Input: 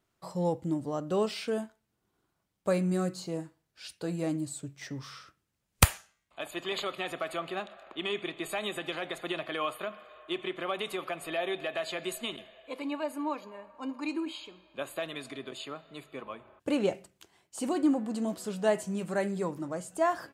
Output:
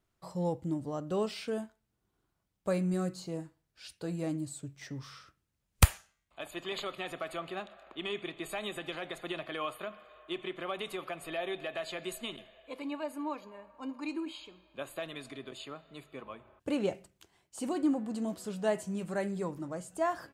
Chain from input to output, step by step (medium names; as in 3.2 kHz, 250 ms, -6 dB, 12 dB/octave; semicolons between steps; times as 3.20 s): bass shelf 83 Hz +11.5 dB; trim -4 dB